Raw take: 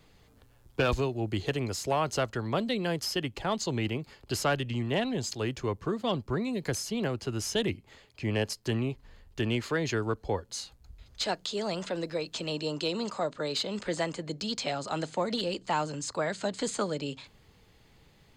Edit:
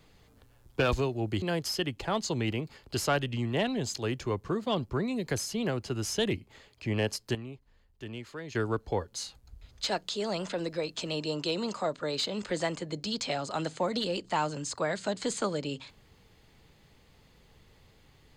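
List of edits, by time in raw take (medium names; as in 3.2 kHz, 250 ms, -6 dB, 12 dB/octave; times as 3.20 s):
1.42–2.79 s: delete
8.72–9.92 s: gain -11.5 dB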